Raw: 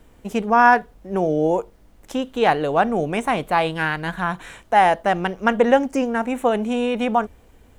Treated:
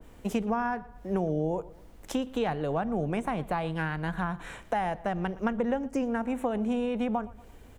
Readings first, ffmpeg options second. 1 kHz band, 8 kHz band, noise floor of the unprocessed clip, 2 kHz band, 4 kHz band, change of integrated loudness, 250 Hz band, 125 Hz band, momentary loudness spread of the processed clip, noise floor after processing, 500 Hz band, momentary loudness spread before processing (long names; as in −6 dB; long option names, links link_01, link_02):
−14.0 dB, −8.0 dB, −52 dBFS, −14.5 dB, −13.0 dB, −10.5 dB, −6.5 dB, −3.0 dB, 5 LU, −51 dBFS, −11.0 dB, 11 LU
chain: -filter_complex "[0:a]acrossover=split=170[link_01][link_02];[link_02]acompressor=threshold=-28dB:ratio=6[link_03];[link_01][link_03]amix=inputs=2:normalize=0,asplit=2[link_04][link_05];[link_05]adelay=117,lowpass=frequency=4700:poles=1,volume=-20dB,asplit=2[link_06][link_07];[link_07]adelay=117,lowpass=frequency=4700:poles=1,volume=0.43,asplit=2[link_08][link_09];[link_09]adelay=117,lowpass=frequency=4700:poles=1,volume=0.43[link_10];[link_06][link_08][link_10]amix=inputs=3:normalize=0[link_11];[link_04][link_11]amix=inputs=2:normalize=0,adynamicequalizer=threshold=0.00562:dfrequency=1800:dqfactor=0.7:tfrequency=1800:tqfactor=0.7:attack=5:release=100:ratio=0.375:range=3:mode=cutabove:tftype=highshelf"